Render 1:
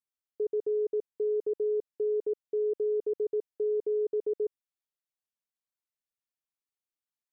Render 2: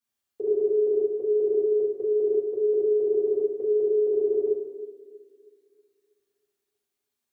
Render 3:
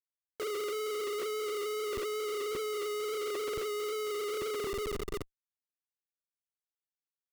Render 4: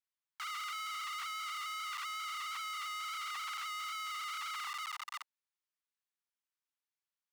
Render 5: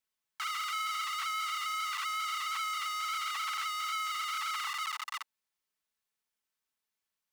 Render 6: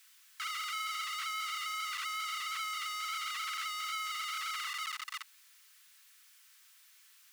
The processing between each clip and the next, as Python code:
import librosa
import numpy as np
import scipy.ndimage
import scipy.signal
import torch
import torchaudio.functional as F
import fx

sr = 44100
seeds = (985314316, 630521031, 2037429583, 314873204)

y1 = fx.echo_banded(x, sr, ms=320, feedback_pct=43, hz=320.0, wet_db=-14.5)
y1 = fx.rev_fdn(y1, sr, rt60_s=0.97, lf_ratio=0.85, hf_ratio=0.95, size_ms=25.0, drr_db=-9.5)
y2 = fx.wow_flutter(y1, sr, seeds[0], rate_hz=2.1, depth_cents=25.0)
y2 = fx.schmitt(y2, sr, flips_db=-43.5)
y2 = y2 * 10.0 ** (-9.0 / 20.0)
y3 = scipy.signal.sosfilt(scipy.signal.butter(12, 830.0, 'highpass', fs=sr, output='sos'), y2)
y3 = fx.high_shelf(y3, sr, hz=7700.0, db=-11.5)
y3 = y3 * 10.0 ** (2.5 / 20.0)
y4 = y3 + 0.37 * np.pad(y3, (int(4.6 * sr / 1000.0), 0))[:len(y3)]
y4 = y4 * 10.0 ** (5.0 / 20.0)
y5 = y4 + 0.5 * 10.0 ** (-52.0 / 20.0) * np.sign(y4)
y5 = scipy.signal.sosfilt(scipy.signal.butter(4, 1300.0, 'highpass', fs=sr, output='sos'), y5)
y5 = y5 * 10.0 ** (-1.5 / 20.0)